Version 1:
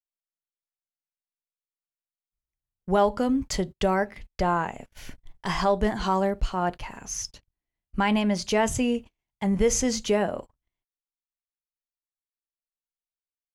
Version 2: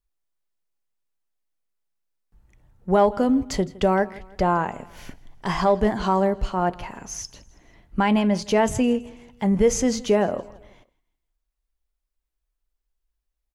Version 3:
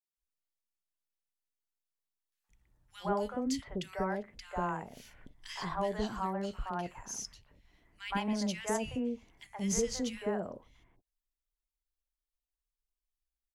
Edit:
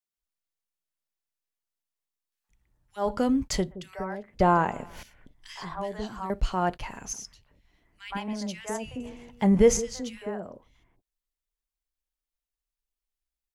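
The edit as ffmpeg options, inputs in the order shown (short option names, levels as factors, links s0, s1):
-filter_complex "[0:a]asplit=2[s0][s1];[1:a]asplit=2[s2][s3];[2:a]asplit=5[s4][s5][s6][s7][s8];[s4]atrim=end=3.12[s9];[s0]atrim=start=2.96:end=3.83[s10];[s5]atrim=start=3.67:end=4.402[s11];[s2]atrim=start=4.398:end=5.032[s12];[s6]atrim=start=5.028:end=6.302[s13];[s1]atrim=start=6.298:end=7.132[s14];[s7]atrim=start=7.128:end=9.002[s15];[s3]atrim=start=8.998:end=9.772[s16];[s8]atrim=start=9.768[s17];[s9][s10]acrossfade=d=0.16:c1=tri:c2=tri[s18];[s18][s11]acrossfade=d=0.16:c1=tri:c2=tri[s19];[s19][s12]acrossfade=d=0.004:c1=hsin:c2=hsin[s20];[s20][s13]acrossfade=d=0.004:c1=hsin:c2=hsin[s21];[s21][s14]acrossfade=d=0.004:c1=hsin:c2=hsin[s22];[s22][s15]acrossfade=d=0.004:c1=hsin:c2=hsin[s23];[s23][s16]acrossfade=d=0.004:c1=hsin:c2=hsin[s24];[s24][s17]acrossfade=d=0.004:c1=hsin:c2=hsin"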